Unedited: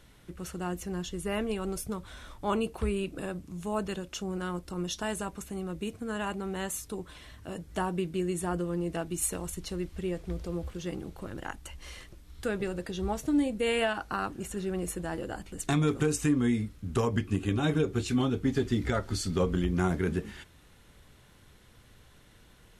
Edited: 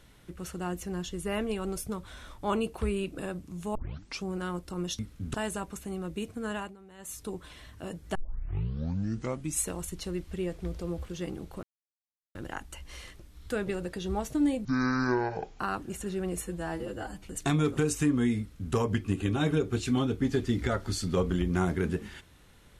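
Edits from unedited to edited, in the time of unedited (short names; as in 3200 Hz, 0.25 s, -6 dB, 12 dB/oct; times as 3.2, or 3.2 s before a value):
3.75 tape start 0.49 s
6.17–6.87 dip -17.5 dB, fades 0.24 s
7.8 tape start 1.50 s
11.28 insert silence 0.72 s
13.58–14.1 speed 55%
14.92–15.47 stretch 1.5×
16.62–16.97 copy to 4.99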